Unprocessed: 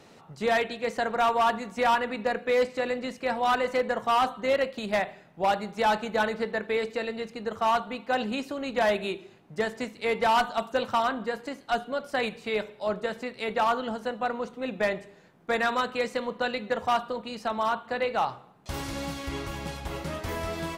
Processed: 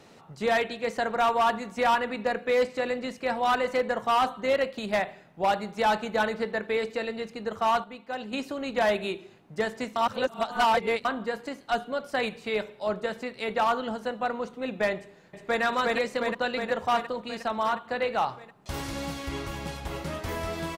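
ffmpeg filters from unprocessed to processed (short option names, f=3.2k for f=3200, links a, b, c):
-filter_complex "[0:a]asplit=2[a][b];[b]afade=t=in:st=14.97:d=0.01,afade=t=out:st=15.62:d=0.01,aecho=0:1:360|720|1080|1440|1800|2160|2520|2880|3240|3600|3960|4320:0.944061|0.660843|0.46259|0.323813|0.226669|0.158668|0.111068|0.0777475|0.0544232|0.0380963|0.0266674|0.0186672[c];[a][c]amix=inputs=2:normalize=0,asplit=5[d][e][f][g][h];[d]atrim=end=7.842[i];[e]atrim=start=7.838:end=8.332,asetpts=PTS-STARTPTS,volume=-7.5dB[j];[f]atrim=start=8.328:end=9.962[k];[g]atrim=start=9.958:end=11.052,asetpts=PTS-STARTPTS,areverse[l];[h]atrim=start=11.048[m];[i][j]acrossfade=d=0.004:c1=hsin:c2=hsin[n];[n][k]acrossfade=d=0.004:c1=hsin:c2=hsin[o];[o][l]acrossfade=d=0.004:c1=hsin:c2=hsin[p];[p][m]acrossfade=d=0.004:c1=hsin:c2=hsin"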